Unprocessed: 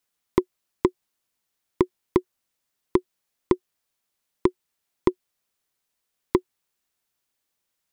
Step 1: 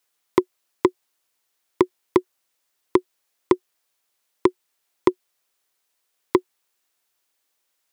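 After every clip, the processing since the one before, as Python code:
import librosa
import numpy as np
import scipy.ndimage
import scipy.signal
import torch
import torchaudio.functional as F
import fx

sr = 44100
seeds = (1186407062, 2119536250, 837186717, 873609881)

y = scipy.signal.sosfilt(scipy.signal.butter(2, 140.0, 'highpass', fs=sr, output='sos'), x)
y = fx.peak_eq(y, sr, hz=190.0, db=-10.5, octaves=0.98)
y = y * 10.0 ** (5.5 / 20.0)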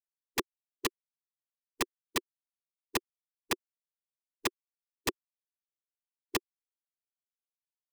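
y = fx.bin_expand(x, sr, power=3.0)
y = fx.env_flanger(y, sr, rest_ms=11.1, full_db=-20.0)
y = (np.mod(10.0 ** (21.5 / 20.0) * y + 1.0, 2.0) - 1.0) / 10.0 ** (21.5 / 20.0)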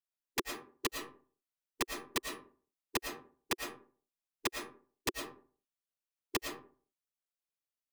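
y = fx.rev_freeverb(x, sr, rt60_s=0.44, hf_ratio=0.5, predelay_ms=70, drr_db=3.5)
y = y * 10.0 ** (-3.0 / 20.0)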